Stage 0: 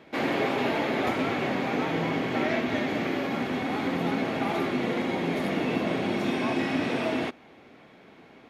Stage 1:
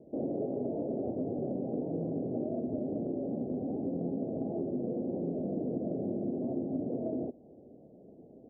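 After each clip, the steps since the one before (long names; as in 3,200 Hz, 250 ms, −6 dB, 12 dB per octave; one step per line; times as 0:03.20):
Butterworth low-pass 640 Hz 48 dB per octave
downward compressor 2.5 to 1, threshold −33 dBFS, peak gain reduction 7.5 dB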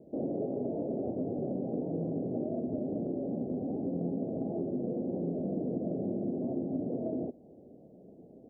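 parametric band 180 Hz +3.5 dB 0.24 octaves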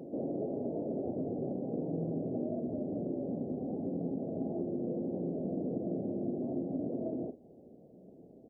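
double-tracking delay 49 ms −12 dB
backwards echo 227 ms −10.5 dB
level −2.5 dB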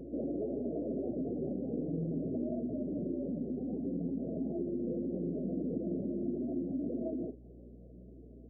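expanding power law on the bin magnitudes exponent 1.7
mains hum 60 Hz, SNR 18 dB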